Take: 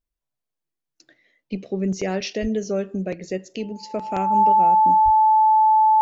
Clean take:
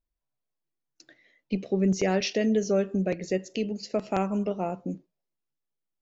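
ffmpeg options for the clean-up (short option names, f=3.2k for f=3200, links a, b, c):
-filter_complex "[0:a]bandreject=f=870:w=30,asplit=3[a][b][c];[a]afade=t=out:st=2.41:d=0.02[d];[b]highpass=f=140:w=0.5412,highpass=f=140:w=1.3066,afade=t=in:st=2.41:d=0.02,afade=t=out:st=2.53:d=0.02[e];[c]afade=t=in:st=2.53:d=0.02[f];[d][e][f]amix=inputs=3:normalize=0,asplit=3[g][h][i];[g]afade=t=out:st=5.04:d=0.02[j];[h]highpass=f=140:w=0.5412,highpass=f=140:w=1.3066,afade=t=in:st=5.04:d=0.02,afade=t=out:st=5.16:d=0.02[k];[i]afade=t=in:st=5.16:d=0.02[l];[j][k][l]amix=inputs=3:normalize=0,asetnsamples=n=441:p=0,asendcmd='5.56 volume volume 4.5dB',volume=0dB"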